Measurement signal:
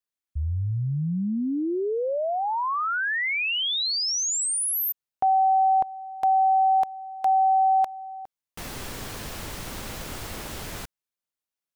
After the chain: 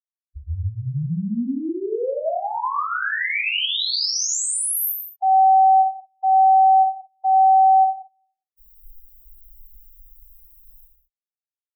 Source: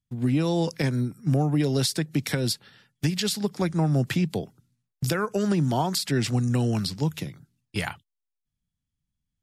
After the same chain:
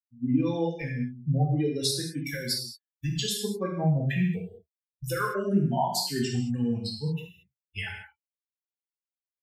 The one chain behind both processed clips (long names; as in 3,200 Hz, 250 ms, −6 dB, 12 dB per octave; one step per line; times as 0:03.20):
spectral dynamics exaggerated over time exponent 3
reverb whose tail is shaped and stops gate 250 ms falling, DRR −3 dB